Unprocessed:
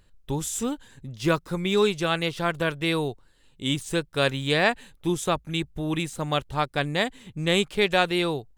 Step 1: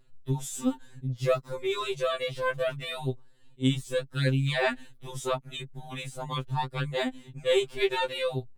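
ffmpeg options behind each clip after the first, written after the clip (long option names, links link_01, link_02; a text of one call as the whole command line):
ffmpeg -i in.wav -af "tiltshelf=frequency=650:gain=3.5,afftfilt=real='re*2.45*eq(mod(b,6),0)':imag='im*2.45*eq(mod(b,6),0)':win_size=2048:overlap=0.75,volume=-1dB" out.wav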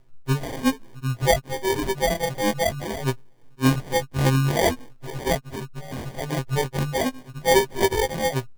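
ffmpeg -i in.wav -af "acrusher=samples=33:mix=1:aa=0.000001,volume=6dB" out.wav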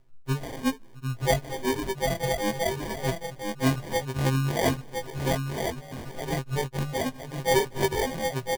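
ffmpeg -i in.wav -af "aecho=1:1:1012:0.562,volume=-5dB" out.wav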